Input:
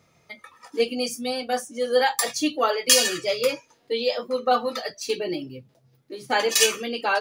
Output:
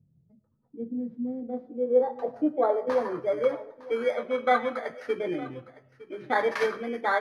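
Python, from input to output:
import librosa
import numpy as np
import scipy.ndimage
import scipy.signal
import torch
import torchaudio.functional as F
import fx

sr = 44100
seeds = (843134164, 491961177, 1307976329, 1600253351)

y = fx.bit_reversed(x, sr, seeds[0], block=16)
y = fx.rev_freeverb(y, sr, rt60_s=0.65, hf_ratio=0.35, predelay_ms=55, drr_db=17.5)
y = fx.filter_sweep_lowpass(y, sr, from_hz=160.0, to_hz=1800.0, start_s=0.6, end_s=3.87, q=1.6)
y = y + 10.0 ** (-19.0 / 20.0) * np.pad(y, (int(909 * sr / 1000.0), 0))[:len(y)]
y = y * 10.0 ** (-2.0 / 20.0)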